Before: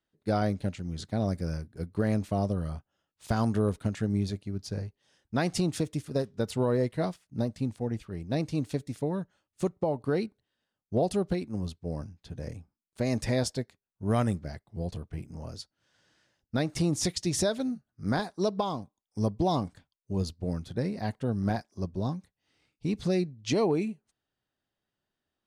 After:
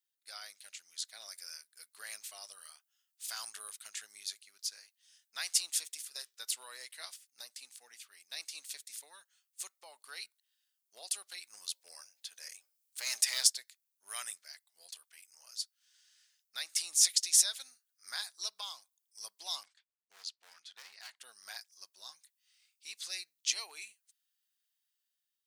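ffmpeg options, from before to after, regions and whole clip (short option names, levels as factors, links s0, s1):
-filter_complex "[0:a]asettb=1/sr,asplit=3[s0][s1][s2];[s0]atrim=end=11.434[s3];[s1]atrim=start=11.43:end=13.47,asetpts=PTS-STARTPTS,afade=t=in:d=0.004:c=qsin,afade=t=out:st=2.036:d=0.004:c=qsin,acontrast=28,bandreject=f=77.43:t=h:w=4,bandreject=f=154.86:t=h:w=4,bandreject=f=232.29:t=h:w=4,bandreject=f=309.72:t=h:w=4,bandreject=f=387.15:t=h:w=4,bandreject=f=464.58:t=h:w=4,bandreject=f=542.01:t=h:w=4,bandreject=f=619.44:t=h:w=4,bandreject=f=696.87:t=h:w=4,bandreject=f=774.3:t=h:w=4,bandreject=f=851.73:t=h:w=4,bandreject=f=929.16:t=h:w=4,volume=8.41,asoftclip=hard,volume=0.119[s4];[s2]atrim=start=13.466[s5];[s3][s4]acrossfade=d=0.004:c1=hsin:c2=qsin[s6];[s6][s5]acrossfade=d=0.004:c1=qsin:c2=hsin,asettb=1/sr,asplit=3[s7][s8][s9];[s7]atrim=end=19.634[s10];[s8]atrim=start=19.63:end=21.2,asetpts=PTS-STARTPTS,afade=t=in:d=0.004:c=qsin,afade=t=out:st=1.566:d=0.004:c=qsin,agate=range=0.0224:threshold=0.00251:ratio=3:release=100:detection=peak,highpass=110,lowpass=4300,asoftclip=type=hard:threshold=0.0282[s11];[s9]atrim=start=21.196[s12];[s10][s11]acrossfade=d=0.004:c1=hsin:c2=qsin[s13];[s13][s12]acrossfade=d=0.004:c1=qsin:c2=hsin,highpass=1500,aderivative,dynaudnorm=f=320:g=5:m=1.78,volume=1.5"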